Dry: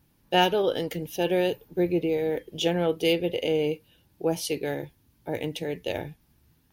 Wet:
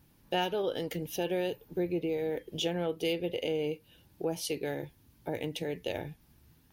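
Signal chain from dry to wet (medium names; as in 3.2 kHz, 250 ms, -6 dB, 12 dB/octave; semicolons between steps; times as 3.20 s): compression 2:1, threshold -37 dBFS, peak gain reduction 12 dB; trim +1.5 dB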